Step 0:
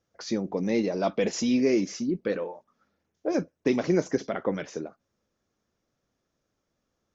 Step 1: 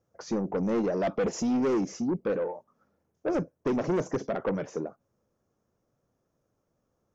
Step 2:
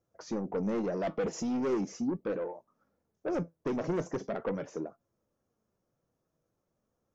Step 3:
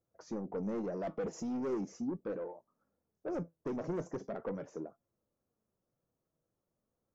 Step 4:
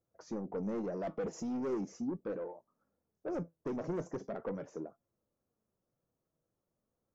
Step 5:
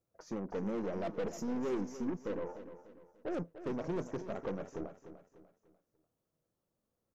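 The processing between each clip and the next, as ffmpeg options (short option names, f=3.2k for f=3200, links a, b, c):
-af "equalizer=f=125:t=o:w=1:g=6,equalizer=f=500:t=o:w=1:g=4,equalizer=f=1k:t=o:w=1:g=3,equalizer=f=2k:t=o:w=1:g=-5,equalizer=f=4k:t=o:w=1:g=-10,asoftclip=type=tanh:threshold=-22.5dB"
-af "flanger=delay=2.9:depth=3.4:regen=77:speed=0.4:shape=sinusoidal"
-af "equalizer=f=3.2k:t=o:w=1.7:g=-7,volume=-5dB"
-af anull
-filter_complex "[0:a]aeval=exprs='0.0376*(cos(1*acos(clip(val(0)/0.0376,-1,1)))-cos(1*PI/2))+0.00376*(cos(6*acos(clip(val(0)/0.0376,-1,1)))-cos(6*PI/2))':c=same,asplit=2[a][b];[b]aecho=0:1:296|592|888|1184:0.251|0.098|0.0382|0.0149[c];[a][c]amix=inputs=2:normalize=0"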